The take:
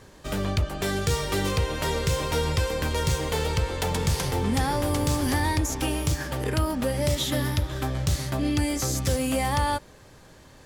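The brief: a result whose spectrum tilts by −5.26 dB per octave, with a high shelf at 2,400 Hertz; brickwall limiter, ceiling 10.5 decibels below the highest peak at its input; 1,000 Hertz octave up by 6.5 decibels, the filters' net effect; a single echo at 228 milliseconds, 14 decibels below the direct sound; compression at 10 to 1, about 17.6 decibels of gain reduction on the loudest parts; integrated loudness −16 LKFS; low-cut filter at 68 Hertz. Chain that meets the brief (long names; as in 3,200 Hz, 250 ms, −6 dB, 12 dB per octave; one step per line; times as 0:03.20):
high-pass filter 68 Hz
parametric band 1,000 Hz +8.5 dB
high-shelf EQ 2,400 Hz −5 dB
downward compressor 10 to 1, threshold −37 dBFS
brickwall limiter −35 dBFS
single-tap delay 228 ms −14 dB
level +27.5 dB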